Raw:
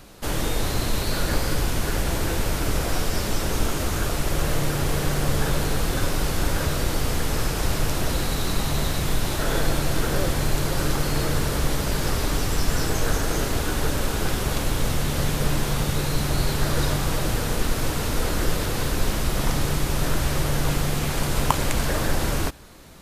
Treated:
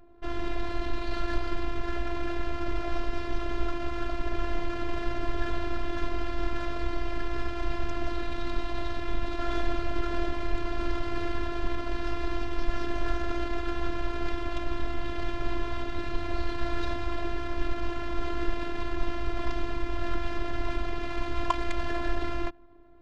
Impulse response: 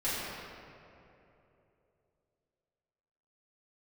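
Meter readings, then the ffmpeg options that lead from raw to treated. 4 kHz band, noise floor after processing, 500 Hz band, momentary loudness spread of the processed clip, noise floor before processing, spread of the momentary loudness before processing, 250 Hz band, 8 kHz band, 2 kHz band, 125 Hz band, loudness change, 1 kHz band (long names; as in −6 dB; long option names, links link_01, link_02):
−13.0 dB, −33 dBFS, −6.5 dB, 2 LU, −27 dBFS, 2 LU, −5.5 dB, −26.5 dB, −8.0 dB, −13.5 dB, −9.0 dB, −5.0 dB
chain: -filter_complex "[0:a]asplit=2[link_01][link_02];[link_02]aderivative[link_03];[1:a]atrim=start_sample=2205,lowpass=3400[link_04];[link_03][link_04]afir=irnorm=-1:irlink=0,volume=-17.5dB[link_05];[link_01][link_05]amix=inputs=2:normalize=0,adynamicsmooth=sensitivity=5:basefreq=650,lowpass=4700,afftfilt=real='hypot(re,im)*cos(PI*b)':imag='0':win_size=512:overlap=0.75,volume=-2dB"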